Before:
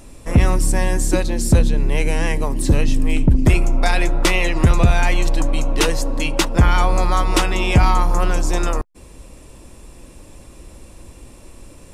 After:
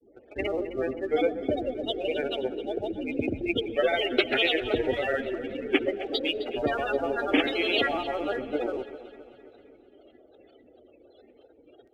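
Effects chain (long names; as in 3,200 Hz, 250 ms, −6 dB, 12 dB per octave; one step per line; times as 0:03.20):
low-pass filter 3,600 Hz 24 dB per octave
gate on every frequency bin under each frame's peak −25 dB strong
high-pass filter 300 Hz 12 dB per octave
in parallel at −8 dB: dead-zone distortion −42 dBFS
on the sum: granular cloud, grains 20 per second, pitch spread up and down by 7 semitones
phaser with its sweep stopped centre 420 Hz, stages 4
delay that swaps between a low-pass and a high-pass 131 ms, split 1,100 Hz, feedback 73%, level −11.5 dB
on a send at −24 dB: convolution reverb RT60 1.3 s, pre-delay 88 ms
on the sum: level −2 dB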